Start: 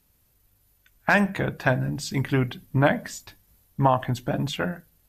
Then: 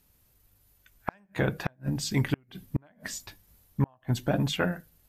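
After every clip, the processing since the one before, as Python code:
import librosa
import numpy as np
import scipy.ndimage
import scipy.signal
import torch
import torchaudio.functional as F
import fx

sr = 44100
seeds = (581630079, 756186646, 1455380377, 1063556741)

y = fx.gate_flip(x, sr, shuts_db=-13.0, range_db=-39)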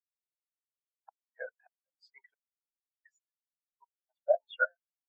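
y = scipy.signal.sosfilt(scipy.signal.butter(4, 580.0, 'highpass', fs=sr, output='sos'), x)
y = fx.high_shelf(y, sr, hz=10000.0, db=-6.5)
y = fx.spectral_expand(y, sr, expansion=4.0)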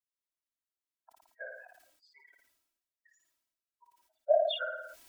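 y = x + 0.84 * np.pad(x, (int(3.1 * sr / 1000.0), 0))[:len(x)]
y = fx.room_flutter(y, sr, wall_m=9.7, rt60_s=0.33)
y = fx.sustainer(y, sr, db_per_s=58.0)
y = F.gain(torch.from_numpy(y), -5.0).numpy()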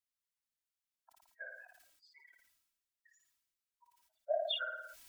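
y = fx.peak_eq(x, sr, hz=460.0, db=-11.5, octaves=1.9)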